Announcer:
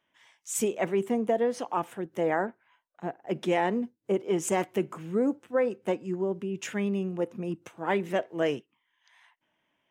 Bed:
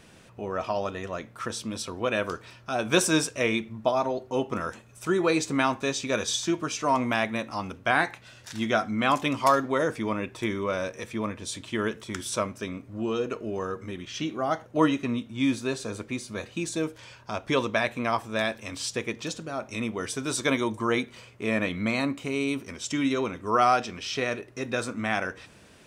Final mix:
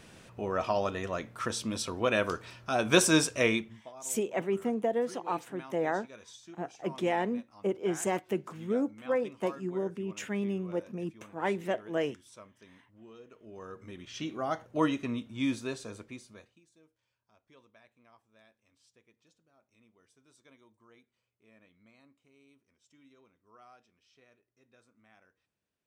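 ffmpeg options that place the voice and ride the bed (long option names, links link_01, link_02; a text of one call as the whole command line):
ffmpeg -i stem1.wav -i stem2.wav -filter_complex "[0:a]adelay=3550,volume=-3.5dB[link_01];[1:a]volume=17.5dB,afade=type=out:start_time=3.47:duration=0.35:silence=0.0707946,afade=type=in:start_time=13.34:duration=0.99:silence=0.125893,afade=type=out:start_time=15.52:duration=1.08:silence=0.0316228[link_02];[link_01][link_02]amix=inputs=2:normalize=0" out.wav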